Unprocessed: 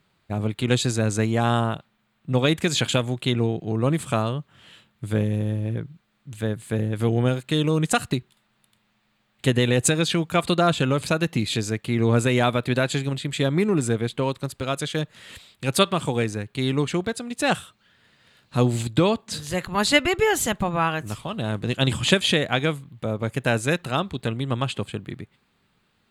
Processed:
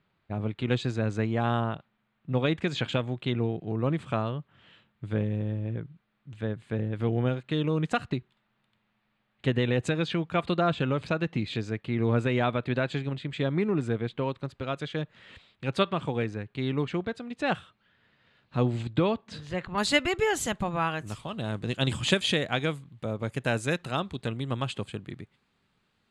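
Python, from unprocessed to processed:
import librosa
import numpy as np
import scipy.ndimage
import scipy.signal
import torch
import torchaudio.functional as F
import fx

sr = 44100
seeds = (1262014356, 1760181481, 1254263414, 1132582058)

y = fx.lowpass(x, sr, hz=fx.steps((0.0, 3100.0), (19.78, 9300.0)), slope=12)
y = y * 10.0 ** (-5.5 / 20.0)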